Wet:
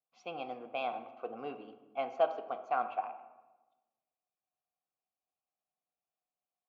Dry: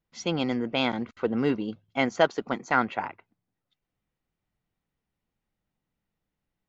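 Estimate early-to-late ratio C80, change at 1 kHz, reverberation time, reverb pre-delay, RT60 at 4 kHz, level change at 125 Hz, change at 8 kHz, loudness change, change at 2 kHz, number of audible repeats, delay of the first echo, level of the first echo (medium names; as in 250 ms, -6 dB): 13.0 dB, -5.0 dB, 1.2 s, 3 ms, 0.75 s, under -25 dB, no reading, -10.0 dB, -16.5 dB, no echo, no echo, no echo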